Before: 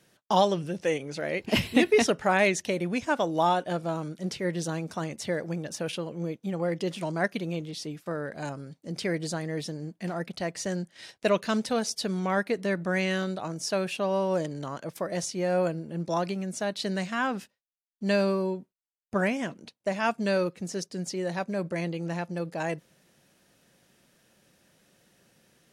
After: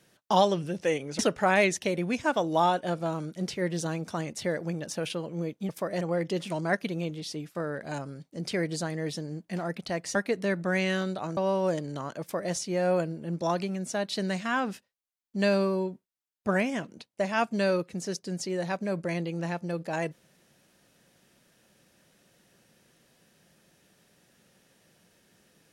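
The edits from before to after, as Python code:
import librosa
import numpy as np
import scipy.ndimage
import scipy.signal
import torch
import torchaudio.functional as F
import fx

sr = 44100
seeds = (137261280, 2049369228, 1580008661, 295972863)

y = fx.edit(x, sr, fx.cut(start_s=1.19, length_s=0.83),
    fx.cut(start_s=10.66, length_s=1.7),
    fx.cut(start_s=13.58, length_s=0.46),
    fx.duplicate(start_s=14.88, length_s=0.32, to_s=6.52), tone=tone)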